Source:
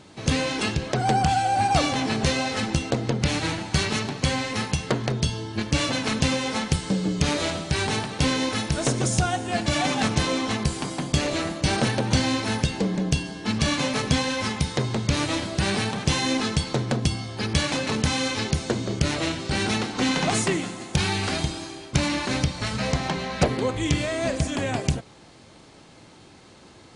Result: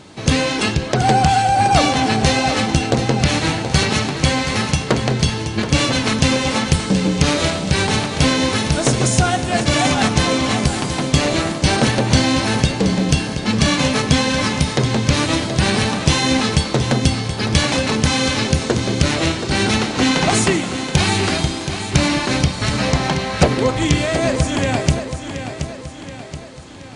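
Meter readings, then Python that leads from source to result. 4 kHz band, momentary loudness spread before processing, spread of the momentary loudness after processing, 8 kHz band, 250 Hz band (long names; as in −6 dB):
+7.5 dB, 4 LU, 4 LU, +7.5 dB, +7.5 dB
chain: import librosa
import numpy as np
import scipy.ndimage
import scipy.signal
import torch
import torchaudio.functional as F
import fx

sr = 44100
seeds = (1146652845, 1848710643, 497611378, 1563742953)

y = fx.echo_feedback(x, sr, ms=726, feedback_pct=50, wet_db=-9.5)
y = y * 10.0 ** (7.0 / 20.0)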